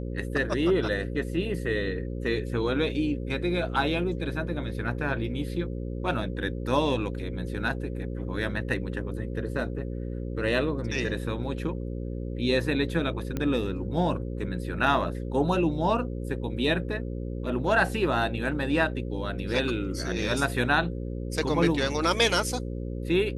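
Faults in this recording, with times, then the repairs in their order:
buzz 60 Hz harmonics 9 -33 dBFS
13.37 pop -17 dBFS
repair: de-click; de-hum 60 Hz, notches 9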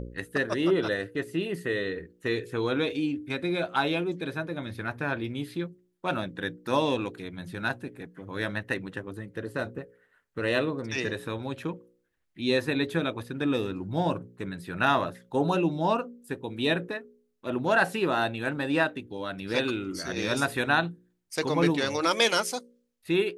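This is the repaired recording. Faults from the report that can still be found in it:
none

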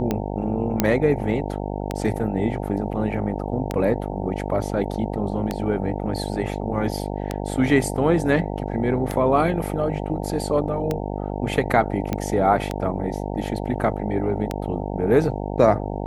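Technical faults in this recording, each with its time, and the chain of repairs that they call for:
buzz 50 Hz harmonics 18 -28 dBFS
tick 33 1/3 rpm -10 dBFS
0.8 pop -3 dBFS
12.13 pop -11 dBFS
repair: de-click; de-hum 50 Hz, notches 18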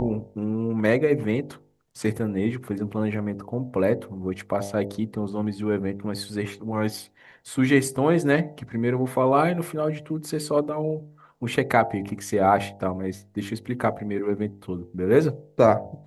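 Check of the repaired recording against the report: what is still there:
none

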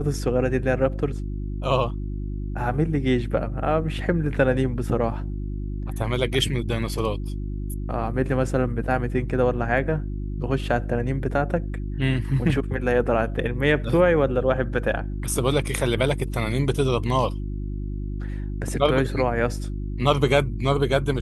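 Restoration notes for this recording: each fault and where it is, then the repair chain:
hum 50 Hz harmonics 7 -29 dBFS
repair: de-hum 50 Hz, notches 7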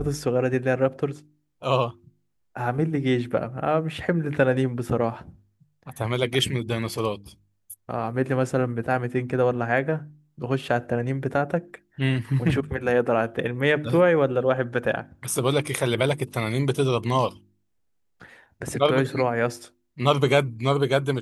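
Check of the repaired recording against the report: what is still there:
none

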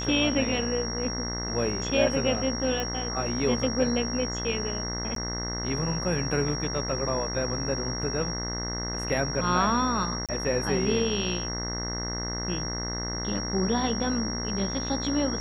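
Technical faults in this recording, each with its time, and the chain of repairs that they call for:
buzz 60 Hz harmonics 35 -34 dBFS
tone 5600 Hz -33 dBFS
2.8 pop -17 dBFS
5.15–5.16 gap 13 ms
10.26–10.29 gap 27 ms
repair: de-click; de-hum 60 Hz, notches 35; notch 5600 Hz, Q 30; interpolate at 5.15, 13 ms; interpolate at 10.26, 27 ms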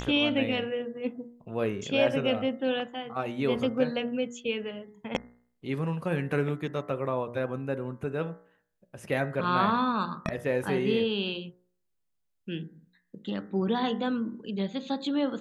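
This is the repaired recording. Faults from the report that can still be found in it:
none

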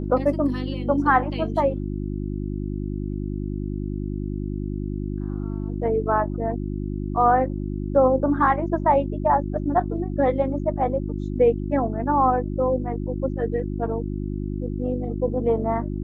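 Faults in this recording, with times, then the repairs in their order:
hum 50 Hz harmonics 7 -28 dBFS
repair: de-hum 50 Hz, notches 7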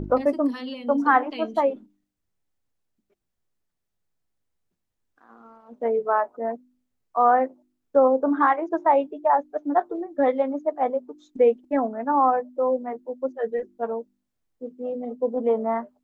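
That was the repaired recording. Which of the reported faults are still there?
none

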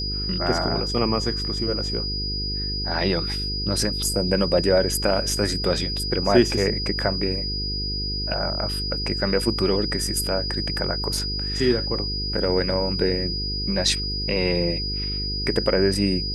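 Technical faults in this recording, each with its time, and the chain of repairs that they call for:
buzz 50 Hz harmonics 9 -30 dBFS
tone 4900 Hz -27 dBFS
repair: de-hum 50 Hz, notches 9; notch 4900 Hz, Q 30

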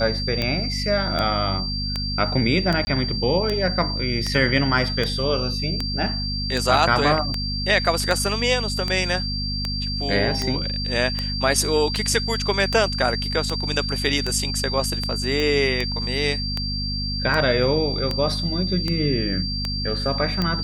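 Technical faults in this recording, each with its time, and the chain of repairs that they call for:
hum 50 Hz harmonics 5 -28 dBFS
tick 78 rpm -10 dBFS
tone 4700 Hz -27 dBFS
2.85–2.87 gap 20 ms
15.4 pop -12 dBFS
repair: de-click; de-hum 50 Hz, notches 5; notch 4700 Hz, Q 30; interpolate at 2.85, 20 ms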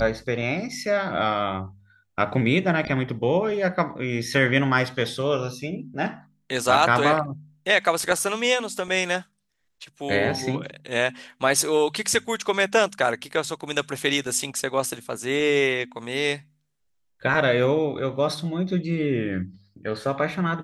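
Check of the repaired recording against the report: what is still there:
none

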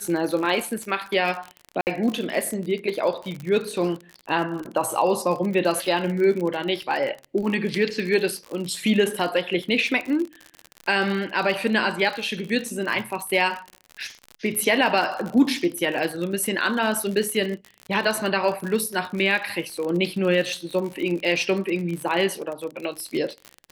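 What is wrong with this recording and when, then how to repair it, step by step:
crackle 54/s -28 dBFS
1.81–1.87 gap 59 ms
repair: de-click; interpolate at 1.81, 59 ms

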